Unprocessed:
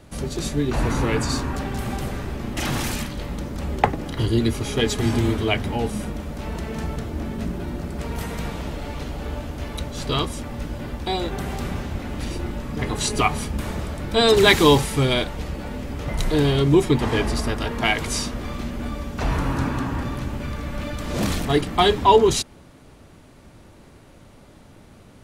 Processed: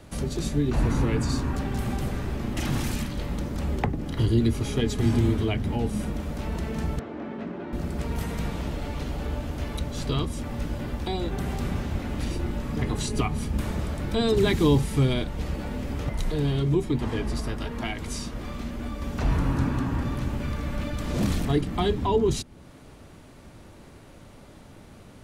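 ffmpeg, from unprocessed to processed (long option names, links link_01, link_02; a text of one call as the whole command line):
ffmpeg -i in.wav -filter_complex "[0:a]asettb=1/sr,asplit=3[link_01][link_02][link_03];[link_01]atrim=end=6.994[link_04];[link_02]atrim=start=6.99:end=7.73,asetpts=PTS-STARTPTS,afade=type=in:duration=0.004:curve=qsin,afade=type=out:start_time=0.736:duration=0.004:curve=qsin,highpass=270,lowpass=2300[link_05];[link_03]atrim=start=7.726[link_06];[link_04][link_05]acrossfade=duration=0.004:curve1=hsin:curve2=qsin[link_07];[link_07][link_06]acrossfade=duration=0.004:curve1=qsin:curve2=hsin,asettb=1/sr,asplit=3[link_08][link_09][link_10];[link_08]atrim=end=16.094[link_11];[link_09]atrim=start=16.09:end=19.02,asetpts=PTS-STARTPTS,afade=type=in:duration=0.004:curve=qsin,afade=type=out:start_time=2.926:duration=0.004:curve=qsin,flanger=delay=2.7:depth=3.8:regen=-68:speed=1.1:shape=triangular[link_12];[link_10]atrim=start=19.016[link_13];[link_11][link_12]acrossfade=duration=0.004:curve1=hsin:curve2=qsin[link_14];[link_14][link_13]acrossfade=duration=0.004:curve1=qsin:curve2=hsin,acrossover=split=330[link_15][link_16];[link_16]acompressor=threshold=-38dB:ratio=2[link_17];[link_15][link_17]amix=inputs=2:normalize=0" out.wav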